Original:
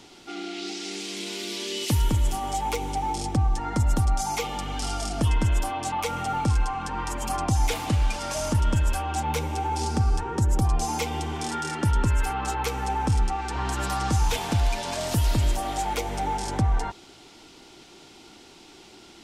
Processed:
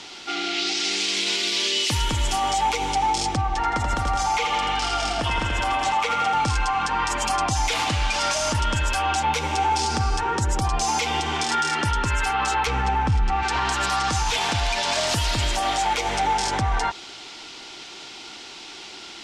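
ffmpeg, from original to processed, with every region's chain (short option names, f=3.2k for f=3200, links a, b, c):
-filter_complex "[0:a]asettb=1/sr,asplit=3[a][b][c];[a]atrim=end=3.414[d];[b]atrim=start=3.41:end=6.34,asetpts=PTS-STARTPTS,afade=t=in:d=0.004:c=qsin,afade=t=out:st=2.926:d=0.004:c=qsin,bass=f=250:g=-5,treble=f=4k:g=-9,aecho=1:1:83|166|249|332|415|498|581|664:0.422|0.253|0.152|0.0911|0.0547|0.0328|0.0197|0.0118,atrim=end_sample=129213[e];[c]atrim=start=6.336[f];[d][e]acrossfade=d=0.004:c1=hsin:c2=qsin[g];[g][f]acrossfade=d=0.004:c1=qsin:c2=hsin,asettb=1/sr,asplit=3[h][i][j];[h]atrim=end=12.674[k];[i]atrim=start=12.67:end=13.43,asetpts=PTS-STARTPTS,afade=t=in:d=0.004:c=qsin,afade=t=out:st=0.756:d=0.004:c=qsin,lowpass=11k,bass=f=250:g=10,treble=f=4k:g=-10[l];[j]atrim=start=13.426[m];[k][l]acrossfade=d=0.004:c1=hsin:c2=qsin[n];[n][m]acrossfade=d=0.004:c1=qsin:c2=hsin,lowpass=6.1k,tiltshelf=f=640:g=-7.5,alimiter=limit=-20.5dB:level=0:latency=1:release=63,volume=6.5dB"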